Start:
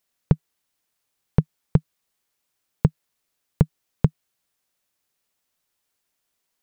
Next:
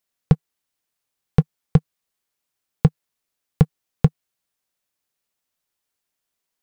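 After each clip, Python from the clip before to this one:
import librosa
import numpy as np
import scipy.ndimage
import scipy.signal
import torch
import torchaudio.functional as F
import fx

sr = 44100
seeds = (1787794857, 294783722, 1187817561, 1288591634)

y = fx.leveller(x, sr, passes=2)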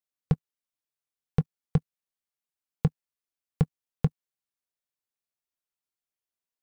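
y = fx.level_steps(x, sr, step_db=19)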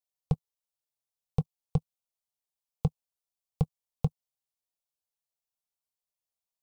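y = fx.fixed_phaser(x, sr, hz=700.0, stages=4)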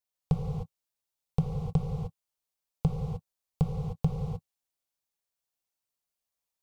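y = fx.rev_gated(x, sr, seeds[0], gate_ms=330, shape='flat', drr_db=-0.5)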